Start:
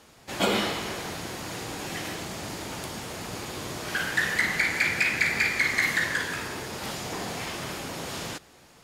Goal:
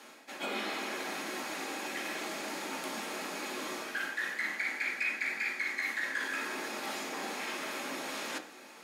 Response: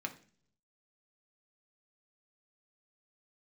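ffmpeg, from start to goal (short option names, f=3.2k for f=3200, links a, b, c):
-filter_complex "[0:a]highpass=f=280:w=0.5412,highpass=f=280:w=1.3066,areverse,acompressor=threshold=-39dB:ratio=5,areverse[a];[1:a]atrim=start_sample=2205[b];[a][b]afir=irnorm=-1:irlink=0,volume=4dB"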